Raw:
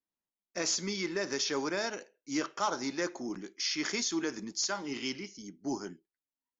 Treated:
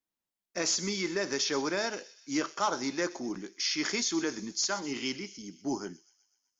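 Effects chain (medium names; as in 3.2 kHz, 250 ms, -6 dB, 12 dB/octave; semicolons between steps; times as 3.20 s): feedback echo behind a high-pass 125 ms, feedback 59%, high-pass 3.7 kHz, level -13 dB; trim +2 dB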